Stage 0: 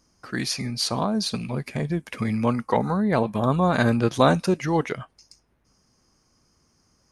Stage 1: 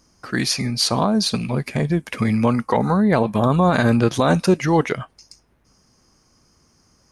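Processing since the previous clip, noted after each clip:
brickwall limiter −12 dBFS, peak gain reduction 8 dB
level +6 dB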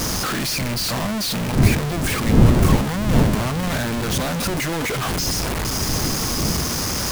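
sign of each sample alone
wind on the microphone 190 Hz −19 dBFS
level −3 dB

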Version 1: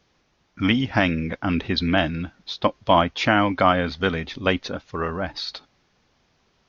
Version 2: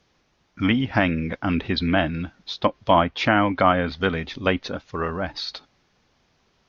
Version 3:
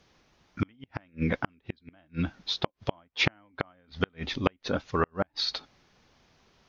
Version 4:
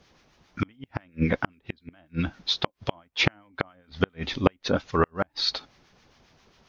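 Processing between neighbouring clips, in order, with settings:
treble cut that deepens with the level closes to 2,900 Hz, closed at −16.5 dBFS
gate with flip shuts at −13 dBFS, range −41 dB; level +1.5 dB
two-band tremolo in antiphase 7.4 Hz, depth 50%, crossover 1,100 Hz; level +6 dB

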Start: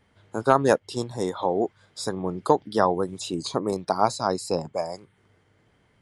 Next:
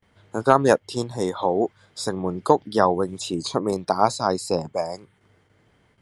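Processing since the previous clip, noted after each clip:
noise gate with hold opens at −54 dBFS
level +2.5 dB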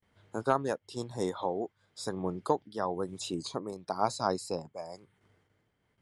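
shaped tremolo triangle 1 Hz, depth 70%
level −7 dB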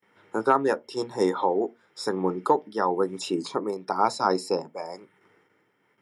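in parallel at 0 dB: brickwall limiter −20.5 dBFS, peak gain reduction 8.5 dB
on the sum: convolution reverb RT60 0.25 s, pre-delay 3 ms, DRR 16.5 dB
level −2.5 dB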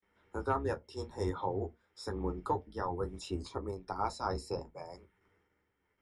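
sub-octave generator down 2 octaves, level +1 dB
flanger 0.55 Hz, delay 9.8 ms, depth 3.2 ms, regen −41%
level −8 dB

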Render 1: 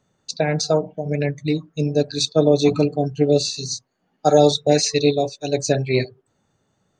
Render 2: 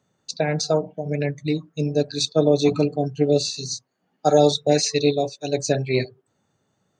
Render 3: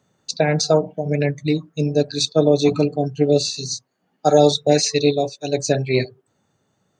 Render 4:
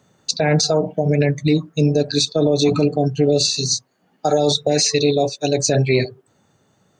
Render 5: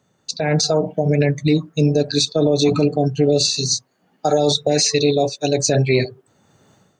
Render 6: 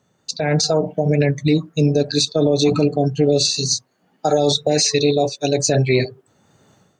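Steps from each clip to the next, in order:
high-pass filter 81 Hz; level −2 dB
speech leveller within 3 dB 2 s; level +2 dB
boost into a limiter +13 dB; level −6 dB
automatic gain control gain up to 14.5 dB; level −6 dB
tape wow and flutter 24 cents

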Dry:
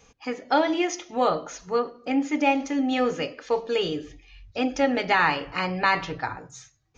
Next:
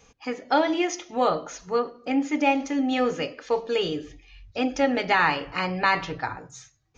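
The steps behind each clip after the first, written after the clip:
no processing that can be heard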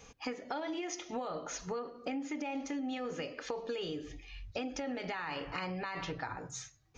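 brickwall limiter −20 dBFS, peak gain reduction 11.5 dB
downward compressor 10 to 1, threshold −36 dBFS, peak gain reduction 13.5 dB
level +1 dB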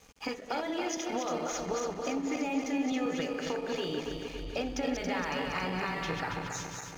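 feedback delay that plays each chunk backwards 139 ms, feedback 77%, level −4 dB
dead-zone distortion −57.5 dBFS
level +3.5 dB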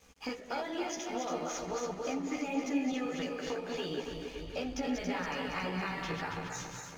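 multi-voice chorus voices 4, 1.4 Hz, delay 14 ms, depth 3 ms

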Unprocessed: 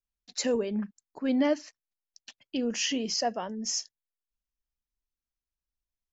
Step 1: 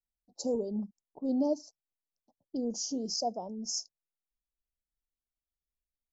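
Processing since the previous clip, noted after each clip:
Chebyshev band-stop filter 810–5,000 Hz, order 3
low-pass that shuts in the quiet parts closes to 710 Hz, open at −28 dBFS
level −3 dB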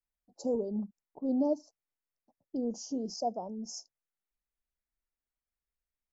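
high shelf with overshoot 2,700 Hz −7.5 dB, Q 1.5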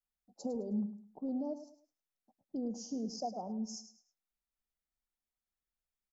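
downward compressor, threshold −32 dBFS, peak gain reduction 8 dB
hollow resonant body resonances 210/760/1,300/3,600 Hz, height 6 dB
on a send: repeating echo 105 ms, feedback 30%, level −12 dB
on the sum: level −4 dB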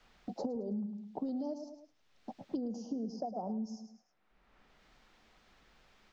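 downward compressor 3 to 1, threshold −40 dBFS, peak gain reduction 7 dB
high-frequency loss of the air 200 metres
multiband upward and downward compressor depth 100%
level +5 dB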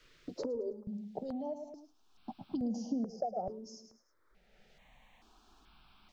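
step-sequenced phaser 2.3 Hz 210–1,900 Hz
level +4.5 dB

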